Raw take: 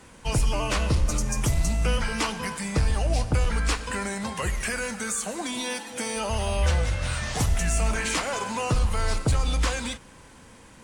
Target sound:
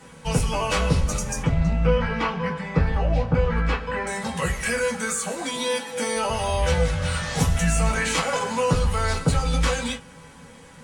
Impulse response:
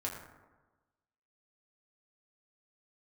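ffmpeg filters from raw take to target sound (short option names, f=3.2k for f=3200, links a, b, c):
-filter_complex "[0:a]asettb=1/sr,asplit=3[a][b][c];[a]atrim=end=1.424[d];[b]atrim=start=1.42:end=4.07,asetpts=PTS-STARTPTS,afade=t=in:d=0.004:c=qsin,afade=t=out:st=2.646:d=0.004:c=qsin,lowpass=2.4k[e];[c]atrim=start=4.066[f];[d][e]acrossfade=d=0.004:c1=hsin:c2=qsin[g];[g][f]acrossfade=d=0.004:c1=qsin:c2=hsin[h];[1:a]atrim=start_sample=2205,atrim=end_sample=3528,asetrate=79380,aresample=44100[i];[h][i]afir=irnorm=-1:irlink=0,volume=7.5dB"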